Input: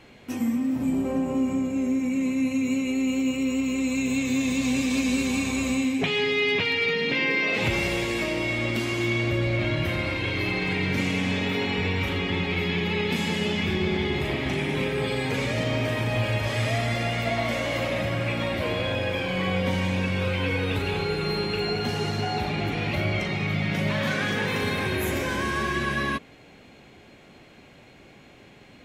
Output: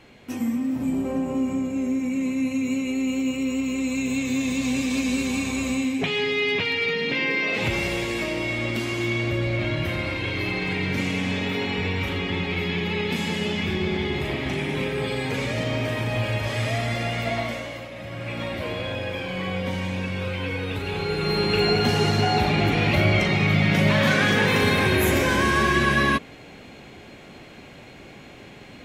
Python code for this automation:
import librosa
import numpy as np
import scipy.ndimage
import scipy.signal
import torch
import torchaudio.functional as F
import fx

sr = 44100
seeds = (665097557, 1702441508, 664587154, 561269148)

y = fx.gain(x, sr, db=fx.line((17.38, 0.0), (17.91, -11.5), (18.4, -2.5), (20.81, -2.5), (21.59, 6.5)))